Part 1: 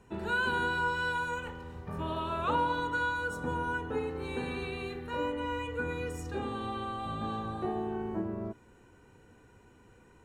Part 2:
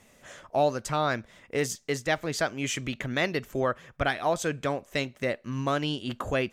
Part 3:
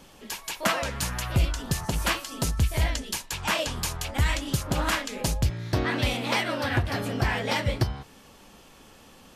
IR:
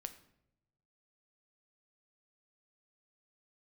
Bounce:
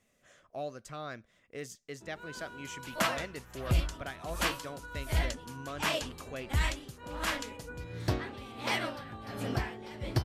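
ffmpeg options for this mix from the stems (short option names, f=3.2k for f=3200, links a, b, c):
-filter_complex "[0:a]adelay=1900,volume=-11.5dB[a];[1:a]bandreject=f=890:w=5.5,volume=-14dB,asplit=2[b][c];[2:a]aeval=exprs='val(0)*pow(10,-20*(0.5-0.5*cos(2*PI*1.4*n/s))/20)':c=same,adelay=2350,volume=-4dB[d];[c]apad=whole_len=535416[e];[a][e]sidechaincompress=threshold=-44dB:ratio=3:attack=16:release=1170[f];[f][b][d]amix=inputs=3:normalize=0"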